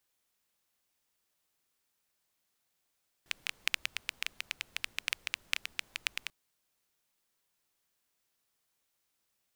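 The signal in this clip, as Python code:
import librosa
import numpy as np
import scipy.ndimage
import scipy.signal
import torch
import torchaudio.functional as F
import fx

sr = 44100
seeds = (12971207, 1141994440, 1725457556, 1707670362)

y = fx.rain(sr, seeds[0], length_s=3.04, drops_per_s=9.2, hz=2500.0, bed_db=-24)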